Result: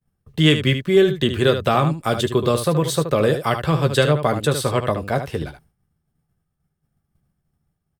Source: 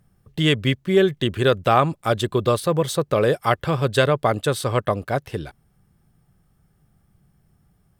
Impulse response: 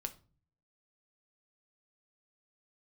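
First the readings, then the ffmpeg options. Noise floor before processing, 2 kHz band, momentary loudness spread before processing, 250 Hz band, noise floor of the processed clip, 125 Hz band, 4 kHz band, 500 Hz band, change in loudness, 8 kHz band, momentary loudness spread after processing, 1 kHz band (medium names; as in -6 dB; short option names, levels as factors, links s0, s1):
-64 dBFS, +1.0 dB, 8 LU, +3.0 dB, -75 dBFS, +3.0 dB, +3.0 dB, +1.5 dB, +1.5 dB, +3.5 dB, 8 LU, -1.0 dB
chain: -filter_complex "[0:a]agate=range=0.0224:threshold=0.00355:ratio=3:detection=peak,acrossover=split=340|3000[s0][s1][s2];[s1]acompressor=threshold=0.0708:ratio=2[s3];[s0][s3][s2]amix=inputs=3:normalize=0,asplit=2[s4][s5];[s5]aecho=0:1:13|75:0.376|0.355[s6];[s4][s6]amix=inputs=2:normalize=0,volume=1.33"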